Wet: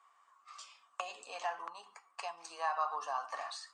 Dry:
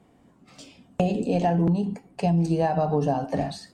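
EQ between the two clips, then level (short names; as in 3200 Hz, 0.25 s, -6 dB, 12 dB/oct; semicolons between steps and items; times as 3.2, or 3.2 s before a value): ladder high-pass 1100 Hz, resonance 85%; synth low-pass 7500 Hz, resonance Q 1.7; +5.0 dB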